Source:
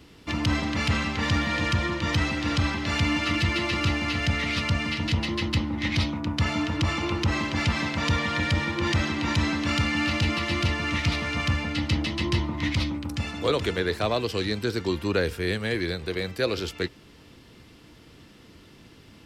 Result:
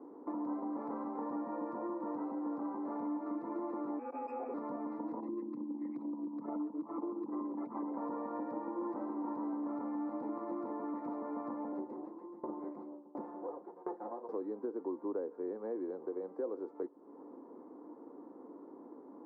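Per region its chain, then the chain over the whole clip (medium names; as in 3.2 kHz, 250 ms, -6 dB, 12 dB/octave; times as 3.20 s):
3.99–4.54 s: tilt EQ -3 dB/octave + frequency inversion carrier 2.6 kHz + transformer saturation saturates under 1.8 kHz
5.20–7.95 s: resonances exaggerated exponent 2 + high-pass 150 Hz
11.72–14.29 s: comb filter that takes the minimum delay 5.7 ms + doubling 34 ms -11 dB + sawtooth tremolo in dB decaying 1.4 Hz, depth 28 dB
whole clip: elliptic band-pass 270–1000 Hz, stop band 50 dB; band-stop 640 Hz, Q 13; compression 3:1, threshold -45 dBFS; trim +4.5 dB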